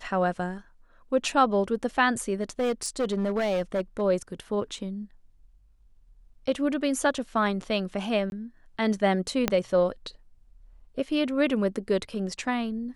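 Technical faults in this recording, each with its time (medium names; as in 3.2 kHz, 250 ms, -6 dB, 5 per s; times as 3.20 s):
2.41–4.02 s: clipped -22 dBFS
8.30–8.32 s: dropout 21 ms
9.48 s: pop -8 dBFS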